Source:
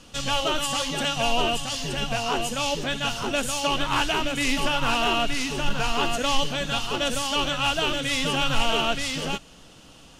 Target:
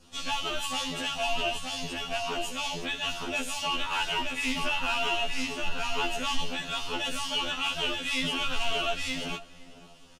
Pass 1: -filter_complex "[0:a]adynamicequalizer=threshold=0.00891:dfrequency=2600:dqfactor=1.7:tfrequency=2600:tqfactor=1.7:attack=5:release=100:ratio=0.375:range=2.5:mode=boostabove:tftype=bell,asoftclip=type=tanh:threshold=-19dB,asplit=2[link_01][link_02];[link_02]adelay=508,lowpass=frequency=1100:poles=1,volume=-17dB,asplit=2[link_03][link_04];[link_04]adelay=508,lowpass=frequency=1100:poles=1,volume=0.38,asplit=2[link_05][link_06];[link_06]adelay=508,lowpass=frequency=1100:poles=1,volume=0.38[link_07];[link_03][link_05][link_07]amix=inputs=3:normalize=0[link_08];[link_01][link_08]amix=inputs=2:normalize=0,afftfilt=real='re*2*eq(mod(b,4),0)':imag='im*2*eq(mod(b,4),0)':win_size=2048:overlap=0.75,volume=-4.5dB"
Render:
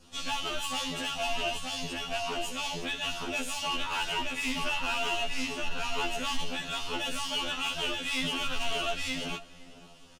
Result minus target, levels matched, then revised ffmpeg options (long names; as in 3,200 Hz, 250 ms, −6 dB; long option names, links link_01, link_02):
soft clipping: distortion +8 dB
-filter_complex "[0:a]adynamicequalizer=threshold=0.00891:dfrequency=2600:dqfactor=1.7:tfrequency=2600:tqfactor=1.7:attack=5:release=100:ratio=0.375:range=2.5:mode=boostabove:tftype=bell,asoftclip=type=tanh:threshold=-12.5dB,asplit=2[link_01][link_02];[link_02]adelay=508,lowpass=frequency=1100:poles=1,volume=-17dB,asplit=2[link_03][link_04];[link_04]adelay=508,lowpass=frequency=1100:poles=1,volume=0.38,asplit=2[link_05][link_06];[link_06]adelay=508,lowpass=frequency=1100:poles=1,volume=0.38[link_07];[link_03][link_05][link_07]amix=inputs=3:normalize=0[link_08];[link_01][link_08]amix=inputs=2:normalize=0,afftfilt=real='re*2*eq(mod(b,4),0)':imag='im*2*eq(mod(b,4),0)':win_size=2048:overlap=0.75,volume=-4.5dB"